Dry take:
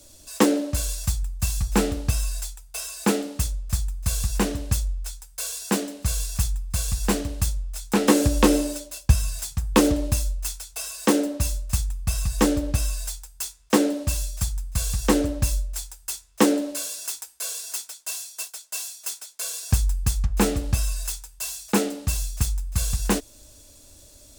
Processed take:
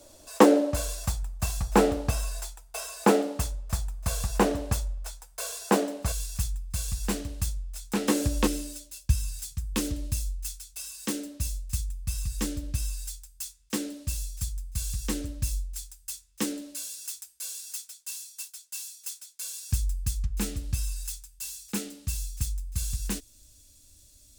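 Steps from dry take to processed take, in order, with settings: peaking EQ 690 Hz +11.5 dB 2.5 oct, from 6.12 s -3.5 dB, from 8.47 s -14 dB; trim -5.5 dB

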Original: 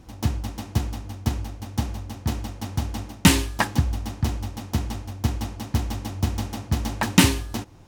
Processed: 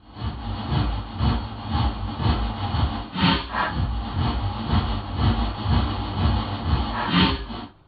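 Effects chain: phase randomisation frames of 200 ms; level rider gain up to 11.5 dB; rippled Chebyshev low-pass 4.5 kHz, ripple 9 dB; trim +2.5 dB

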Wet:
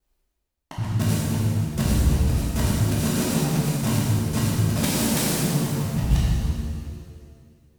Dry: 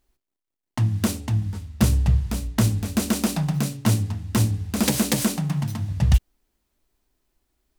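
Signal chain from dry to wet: time reversed locally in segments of 71 ms; pitch-shifted reverb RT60 1.9 s, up +7 st, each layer -8 dB, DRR -7 dB; trim -7 dB

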